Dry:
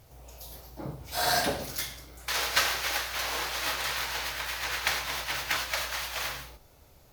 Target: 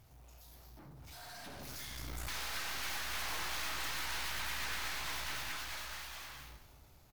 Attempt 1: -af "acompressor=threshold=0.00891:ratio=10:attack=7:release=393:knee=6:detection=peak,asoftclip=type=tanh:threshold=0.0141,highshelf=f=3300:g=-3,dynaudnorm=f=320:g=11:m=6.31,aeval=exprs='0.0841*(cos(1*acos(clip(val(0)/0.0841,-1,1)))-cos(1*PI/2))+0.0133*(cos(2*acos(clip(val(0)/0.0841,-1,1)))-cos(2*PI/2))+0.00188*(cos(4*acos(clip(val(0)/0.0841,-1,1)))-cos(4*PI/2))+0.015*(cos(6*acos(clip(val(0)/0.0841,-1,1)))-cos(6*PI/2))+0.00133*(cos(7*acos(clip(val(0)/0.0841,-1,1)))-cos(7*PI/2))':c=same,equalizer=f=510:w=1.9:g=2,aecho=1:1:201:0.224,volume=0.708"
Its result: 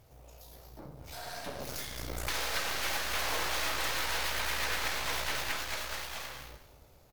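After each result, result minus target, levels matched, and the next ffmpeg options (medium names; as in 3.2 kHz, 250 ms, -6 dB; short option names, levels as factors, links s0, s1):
saturation: distortion -11 dB; 500 Hz band +6.0 dB
-af "acompressor=threshold=0.00891:ratio=10:attack=7:release=393:knee=6:detection=peak,asoftclip=type=tanh:threshold=0.00376,highshelf=f=3300:g=-3,dynaudnorm=f=320:g=11:m=6.31,aeval=exprs='0.0841*(cos(1*acos(clip(val(0)/0.0841,-1,1)))-cos(1*PI/2))+0.0133*(cos(2*acos(clip(val(0)/0.0841,-1,1)))-cos(2*PI/2))+0.00188*(cos(4*acos(clip(val(0)/0.0841,-1,1)))-cos(4*PI/2))+0.015*(cos(6*acos(clip(val(0)/0.0841,-1,1)))-cos(6*PI/2))+0.00133*(cos(7*acos(clip(val(0)/0.0841,-1,1)))-cos(7*PI/2))':c=same,equalizer=f=510:w=1.9:g=2,aecho=1:1:201:0.224,volume=0.708"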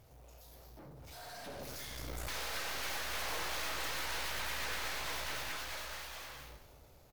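500 Hz band +6.0 dB
-af "acompressor=threshold=0.00891:ratio=10:attack=7:release=393:knee=6:detection=peak,asoftclip=type=tanh:threshold=0.00376,highshelf=f=3300:g=-3,dynaudnorm=f=320:g=11:m=6.31,aeval=exprs='0.0841*(cos(1*acos(clip(val(0)/0.0841,-1,1)))-cos(1*PI/2))+0.0133*(cos(2*acos(clip(val(0)/0.0841,-1,1)))-cos(2*PI/2))+0.00188*(cos(4*acos(clip(val(0)/0.0841,-1,1)))-cos(4*PI/2))+0.015*(cos(6*acos(clip(val(0)/0.0841,-1,1)))-cos(6*PI/2))+0.00133*(cos(7*acos(clip(val(0)/0.0841,-1,1)))-cos(7*PI/2))':c=same,equalizer=f=510:w=1.9:g=-7.5,aecho=1:1:201:0.224,volume=0.708"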